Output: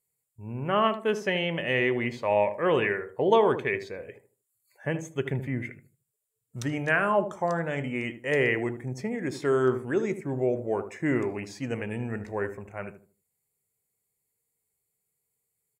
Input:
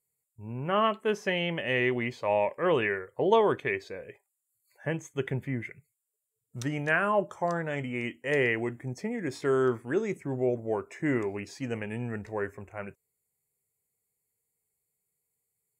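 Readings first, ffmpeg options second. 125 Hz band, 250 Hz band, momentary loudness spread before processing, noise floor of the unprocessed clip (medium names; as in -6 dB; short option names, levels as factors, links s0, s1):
+2.0 dB, +2.0 dB, 11 LU, -83 dBFS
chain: -filter_complex "[0:a]asplit=2[s0][s1];[s1]adelay=77,lowpass=f=930:p=1,volume=0.355,asplit=2[s2][s3];[s3]adelay=77,lowpass=f=930:p=1,volume=0.32,asplit=2[s4][s5];[s5]adelay=77,lowpass=f=930:p=1,volume=0.32,asplit=2[s6][s7];[s7]adelay=77,lowpass=f=930:p=1,volume=0.32[s8];[s0][s2][s4][s6][s8]amix=inputs=5:normalize=0,volume=1.19"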